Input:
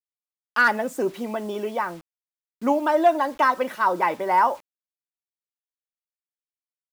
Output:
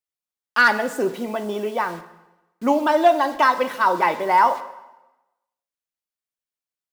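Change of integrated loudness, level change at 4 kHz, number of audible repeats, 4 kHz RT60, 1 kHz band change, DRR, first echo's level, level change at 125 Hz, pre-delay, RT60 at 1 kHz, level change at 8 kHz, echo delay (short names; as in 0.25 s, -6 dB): +3.0 dB, +6.5 dB, none, 0.95 s, +3.0 dB, 11.0 dB, none, n/a, 5 ms, 1.0 s, n/a, none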